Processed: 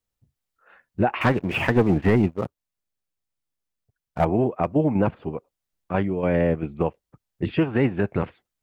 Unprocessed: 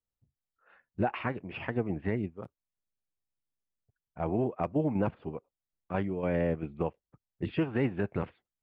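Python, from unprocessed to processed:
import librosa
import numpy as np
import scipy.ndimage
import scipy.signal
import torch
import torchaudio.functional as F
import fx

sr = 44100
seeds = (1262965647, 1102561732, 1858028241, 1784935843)

y = fx.leveller(x, sr, passes=2, at=(1.21, 4.25))
y = y * 10.0 ** (8.0 / 20.0)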